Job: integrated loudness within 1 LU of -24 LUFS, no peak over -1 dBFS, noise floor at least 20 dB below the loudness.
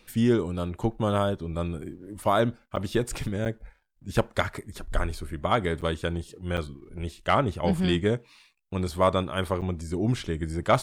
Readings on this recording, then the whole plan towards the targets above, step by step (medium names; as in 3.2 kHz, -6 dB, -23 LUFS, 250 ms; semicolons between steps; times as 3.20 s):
dropouts 5; longest dropout 7.9 ms; loudness -28.0 LUFS; peak level -9.0 dBFS; loudness target -24.0 LUFS
-> interpolate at 2.76/3.45/5.81/6.57/9.61 s, 7.9 ms; trim +4 dB